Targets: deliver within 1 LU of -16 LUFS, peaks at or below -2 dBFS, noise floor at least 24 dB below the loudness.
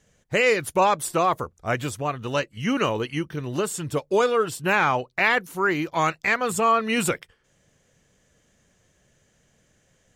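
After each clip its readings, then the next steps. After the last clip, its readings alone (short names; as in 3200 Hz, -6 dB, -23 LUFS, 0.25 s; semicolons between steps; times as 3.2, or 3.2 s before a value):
loudness -23.5 LUFS; peak -8.5 dBFS; loudness target -16.0 LUFS
-> gain +7.5 dB; limiter -2 dBFS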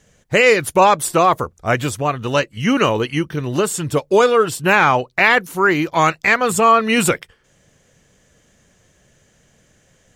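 loudness -16.0 LUFS; peak -2.0 dBFS; noise floor -58 dBFS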